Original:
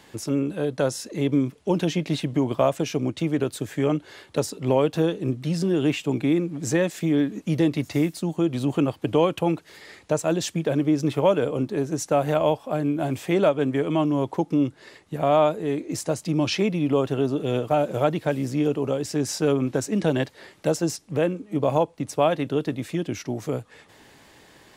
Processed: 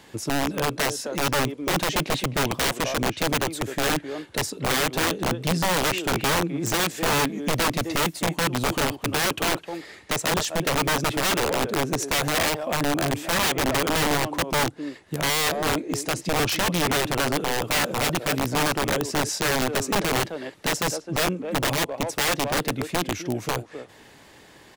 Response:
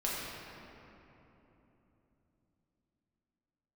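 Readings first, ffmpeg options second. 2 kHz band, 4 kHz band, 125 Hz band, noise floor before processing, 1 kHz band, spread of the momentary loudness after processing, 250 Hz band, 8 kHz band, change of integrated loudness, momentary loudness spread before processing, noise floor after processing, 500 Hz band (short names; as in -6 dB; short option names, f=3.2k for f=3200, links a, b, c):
+10.5 dB, +10.0 dB, -3.0 dB, -53 dBFS, +4.0 dB, 5 LU, -5.0 dB, +9.0 dB, 0.0 dB, 7 LU, -50 dBFS, -4.0 dB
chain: -filter_complex "[0:a]asplit=2[a][b];[b]adelay=260,highpass=300,lowpass=3.4k,asoftclip=type=hard:threshold=-16.5dB,volume=-10dB[c];[a][c]amix=inputs=2:normalize=0,aeval=exprs='(mod(8.41*val(0)+1,2)-1)/8.41':c=same,volume=1.5dB"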